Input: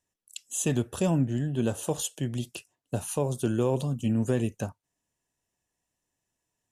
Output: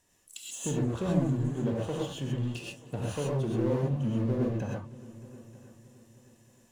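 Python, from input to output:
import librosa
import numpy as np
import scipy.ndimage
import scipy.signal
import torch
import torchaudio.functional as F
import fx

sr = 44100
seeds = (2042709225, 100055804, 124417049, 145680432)

y = fx.env_lowpass_down(x, sr, base_hz=860.0, full_db=-23.5)
y = fx.power_curve(y, sr, exponent=0.7)
y = fx.echo_heads(y, sr, ms=310, heads='all three', feedback_pct=44, wet_db=-24)
y = fx.rev_gated(y, sr, seeds[0], gate_ms=150, shape='rising', drr_db=-3.0)
y = y * 10.0 ** (-8.5 / 20.0)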